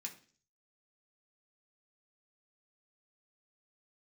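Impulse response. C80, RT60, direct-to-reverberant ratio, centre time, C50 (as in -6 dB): 17.0 dB, 0.45 s, -0.5 dB, 12 ms, 12.5 dB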